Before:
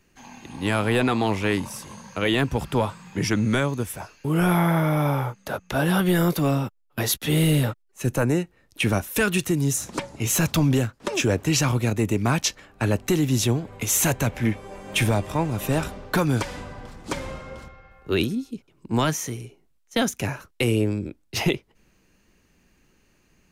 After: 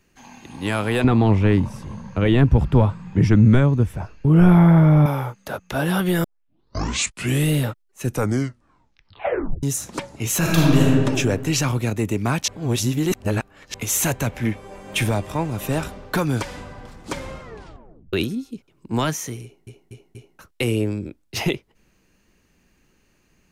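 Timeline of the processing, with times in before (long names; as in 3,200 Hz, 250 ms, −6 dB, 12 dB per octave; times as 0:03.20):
0:01.04–0:05.06: RIAA equalisation playback
0:06.24: tape start 1.27 s
0:08.07: tape stop 1.56 s
0:10.38–0:10.87: thrown reverb, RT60 1.8 s, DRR −4.5 dB
0:12.48–0:13.74: reverse
0:17.42: tape stop 0.71 s
0:19.43: stutter in place 0.24 s, 4 plays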